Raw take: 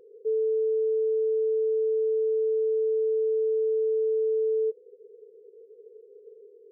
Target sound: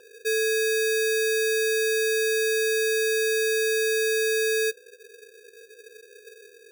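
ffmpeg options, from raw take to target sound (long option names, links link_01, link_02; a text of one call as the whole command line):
ffmpeg -i in.wav -af "acrusher=samples=21:mix=1:aa=0.000001,equalizer=frequency=390:width_type=o:width=0.54:gain=-7,volume=5dB" out.wav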